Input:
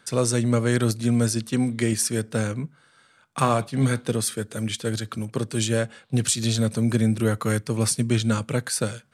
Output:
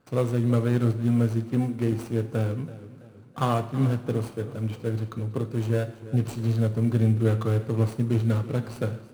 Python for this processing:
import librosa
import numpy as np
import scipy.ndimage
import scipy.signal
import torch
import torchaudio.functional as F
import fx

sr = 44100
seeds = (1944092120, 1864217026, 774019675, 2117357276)

p1 = scipy.ndimage.median_filter(x, 25, mode='constant')
p2 = fx.sample_hold(p1, sr, seeds[0], rate_hz=10000.0, jitter_pct=0)
p3 = p1 + F.gain(torch.from_numpy(p2), -10.0).numpy()
p4 = fx.rev_double_slope(p3, sr, seeds[1], early_s=0.54, late_s=4.5, knee_db=-20, drr_db=8.0)
p5 = fx.echo_warbled(p4, sr, ms=330, feedback_pct=43, rate_hz=2.8, cents=66, wet_db=-16.5)
y = F.gain(torch.from_numpy(p5), -4.5).numpy()